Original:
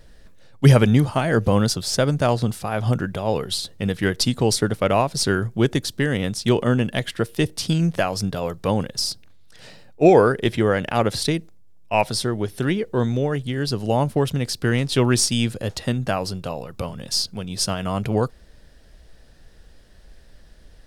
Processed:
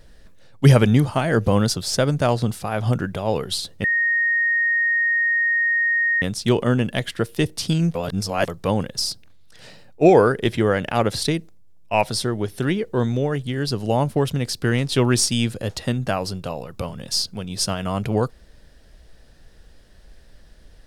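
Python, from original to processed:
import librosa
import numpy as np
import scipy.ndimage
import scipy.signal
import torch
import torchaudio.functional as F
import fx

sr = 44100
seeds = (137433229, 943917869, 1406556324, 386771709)

y = fx.edit(x, sr, fx.bleep(start_s=3.84, length_s=2.38, hz=1860.0, db=-16.5),
    fx.reverse_span(start_s=7.95, length_s=0.53), tone=tone)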